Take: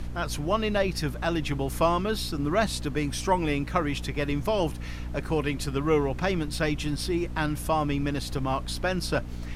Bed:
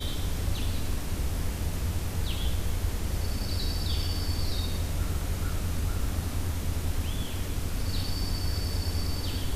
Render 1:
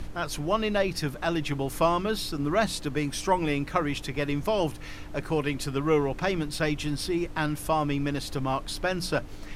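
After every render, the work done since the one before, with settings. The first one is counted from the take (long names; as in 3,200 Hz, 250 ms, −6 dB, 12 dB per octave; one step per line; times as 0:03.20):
mains-hum notches 60/120/180/240 Hz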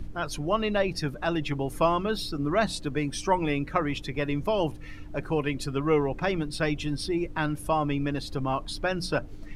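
broadband denoise 11 dB, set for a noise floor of −40 dBFS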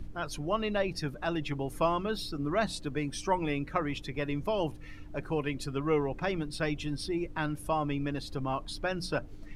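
level −4.5 dB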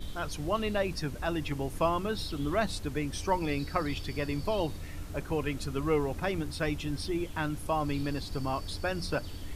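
mix in bed −12 dB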